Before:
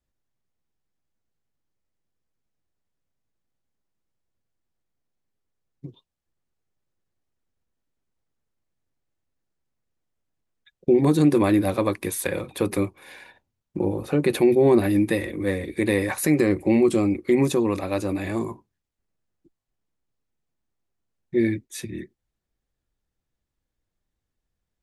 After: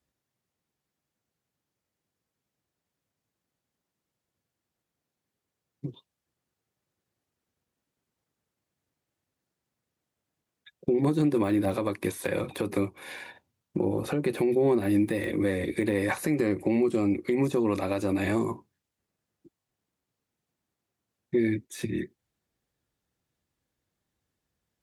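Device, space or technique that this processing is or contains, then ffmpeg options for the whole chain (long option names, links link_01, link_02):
podcast mastering chain: -af "highpass=91,deesser=0.85,acompressor=threshold=-26dB:ratio=2.5,alimiter=limit=-19dB:level=0:latency=1:release=178,volume=4dB" -ar 44100 -c:a libmp3lame -b:a 96k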